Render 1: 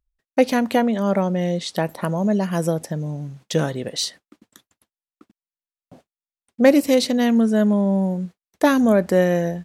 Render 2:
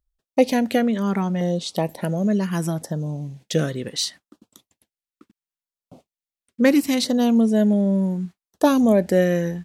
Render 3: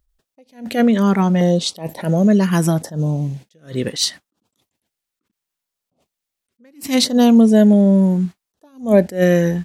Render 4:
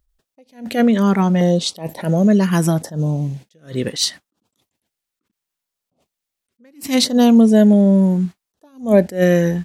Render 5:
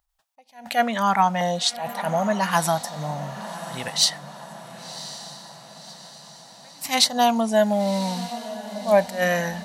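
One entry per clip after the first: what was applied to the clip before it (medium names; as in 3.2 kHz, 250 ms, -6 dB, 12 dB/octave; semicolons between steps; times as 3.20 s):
LFO notch saw down 0.71 Hz 420–2600 Hz
in parallel at -1 dB: compression, threshold -28 dBFS, peak gain reduction 16.5 dB; on the sum: attacks held to a fixed rise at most 190 dB/s; trim +5 dB
no audible change
resonant low shelf 560 Hz -12 dB, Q 3; echo that smears into a reverb 1073 ms, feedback 52%, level -13 dB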